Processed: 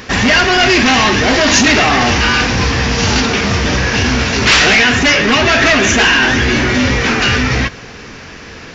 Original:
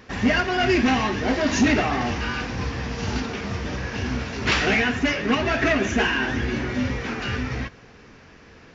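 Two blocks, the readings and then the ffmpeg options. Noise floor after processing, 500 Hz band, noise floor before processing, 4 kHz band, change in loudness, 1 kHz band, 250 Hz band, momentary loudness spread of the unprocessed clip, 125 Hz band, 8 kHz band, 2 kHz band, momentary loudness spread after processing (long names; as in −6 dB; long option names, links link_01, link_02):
−32 dBFS, +10.0 dB, −48 dBFS, +17.0 dB, +12.5 dB, +12.0 dB, +8.5 dB, 9 LU, +11.0 dB, can't be measured, +14.0 dB, 5 LU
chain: -af "apsyclip=23dB,highshelf=frequency=2200:gain=7.5,volume=-8.5dB"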